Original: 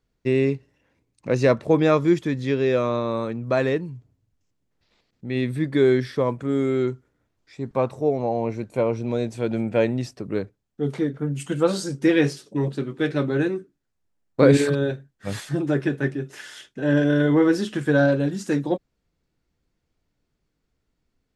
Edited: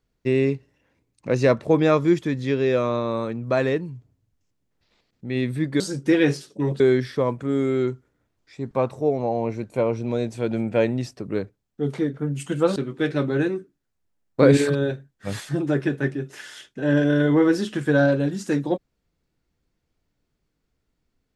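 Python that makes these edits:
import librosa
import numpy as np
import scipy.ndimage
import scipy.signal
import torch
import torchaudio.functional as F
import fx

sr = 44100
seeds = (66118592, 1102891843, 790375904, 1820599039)

y = fx.edit(x, sr, fx.move(start_s=11.76, length_s=1.0, to_s=5.8), tone=tone)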